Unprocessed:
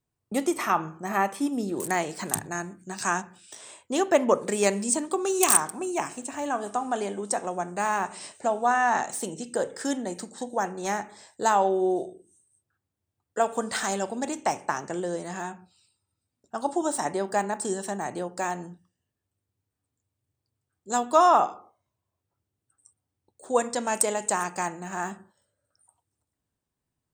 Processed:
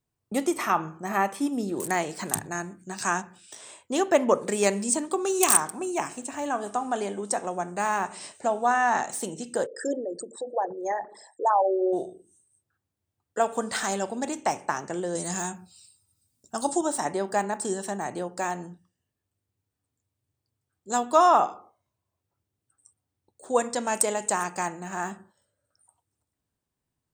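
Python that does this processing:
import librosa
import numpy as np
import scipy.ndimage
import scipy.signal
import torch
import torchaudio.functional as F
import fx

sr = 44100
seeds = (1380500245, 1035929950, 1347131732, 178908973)

y = fx.envelope_sharpen(x, sr, power=3.0, at=(9.65, 11.92), fade=0.02)
y = fx.bass_treble(y, sr, bass_db=6, treble_db=15, at=(15.15, 16.81))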